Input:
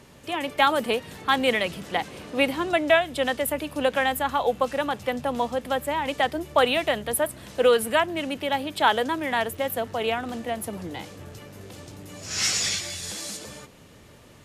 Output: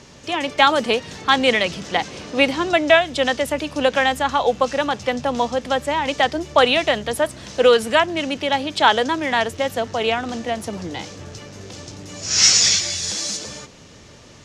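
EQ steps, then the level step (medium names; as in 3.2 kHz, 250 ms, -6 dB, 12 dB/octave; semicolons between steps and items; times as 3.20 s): resonant low-pass 6 kHz, resonance Q 2.6; +5.0 dB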